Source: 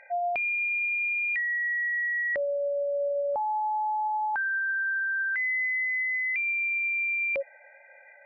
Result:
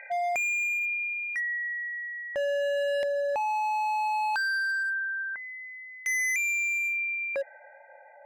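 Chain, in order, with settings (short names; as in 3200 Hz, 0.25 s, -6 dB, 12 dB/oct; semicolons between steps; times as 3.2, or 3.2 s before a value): LFO low-pass saw down 0.33 Hz 640–2300 Hz; hard clip -28.5 dBFS, distortion -8 dB; gain +2 dB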